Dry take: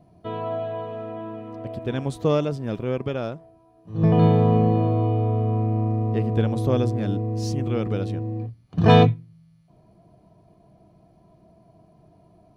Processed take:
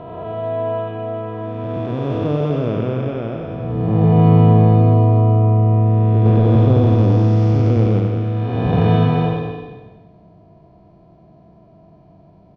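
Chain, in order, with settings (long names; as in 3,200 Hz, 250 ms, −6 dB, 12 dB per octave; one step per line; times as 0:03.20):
spectrum smeared in time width 713 ms
0:06.25–0:08.00: leveller curve on the samples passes 1
high-frequency loss of the air 180 metres
repeating echo 93 ms, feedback 55%, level −6.5 dB
level +8 dB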